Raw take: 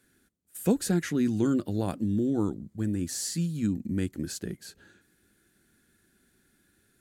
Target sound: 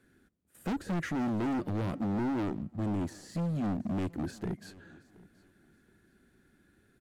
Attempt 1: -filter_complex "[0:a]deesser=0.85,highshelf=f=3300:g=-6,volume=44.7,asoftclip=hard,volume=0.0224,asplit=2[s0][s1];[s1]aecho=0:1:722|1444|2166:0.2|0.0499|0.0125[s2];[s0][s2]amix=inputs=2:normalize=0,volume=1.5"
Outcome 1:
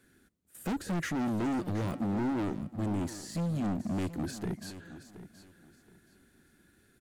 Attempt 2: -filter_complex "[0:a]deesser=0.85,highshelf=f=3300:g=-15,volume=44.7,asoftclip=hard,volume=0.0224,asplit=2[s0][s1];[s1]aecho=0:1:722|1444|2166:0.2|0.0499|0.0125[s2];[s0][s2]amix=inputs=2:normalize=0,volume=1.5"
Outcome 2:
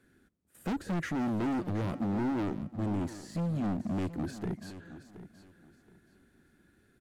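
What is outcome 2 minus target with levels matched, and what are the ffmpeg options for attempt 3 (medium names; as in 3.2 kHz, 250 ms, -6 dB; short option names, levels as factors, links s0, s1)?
echo-to-direct +8.5 dB
-filter_complex "[0:a]deesser=0.85,highshelf=f=3300:g=-15,volume=44.7,asoftclip=hard,volume=0.0224,asplit=2[s0][s1];[s1]aecho=0:1:722|1444:0.075|0.0187[s2];[s0][s2]amix=inputs=2:normalize=0,volume=1.5"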